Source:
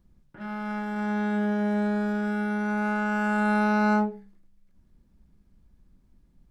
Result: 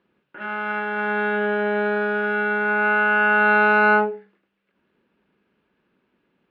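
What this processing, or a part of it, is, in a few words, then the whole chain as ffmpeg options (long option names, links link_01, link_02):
phone earpiece: -af "highpass=410,equalizer=frequency=420:width_type=q:width=4:gain=6,equalizer=frequency=710:width_type=q:width=4:gain=-3,equalizer=frequency=1500:width_type=q:width=4:gain=6,equalizer=frequency=2700:width_type=q:width=4:gain=8,lowpass=frequency=3400:width=0.5412,lowpass=frequency=3400:width=1.3066,volume=7.5dB"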